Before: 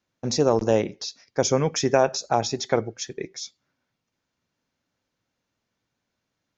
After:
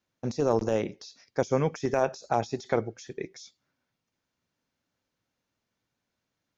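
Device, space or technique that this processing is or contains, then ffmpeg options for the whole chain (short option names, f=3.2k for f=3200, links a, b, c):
de-esser from a sidechain: -filter_complex "[0:a]asplit=2[a][b];[b]highpass=5.2k,apad=whole_len=289764[c];[a][c]sidechaincompress=threshold=-45dB:ratio=6:attack=4.9:release=27,volume=-3dB"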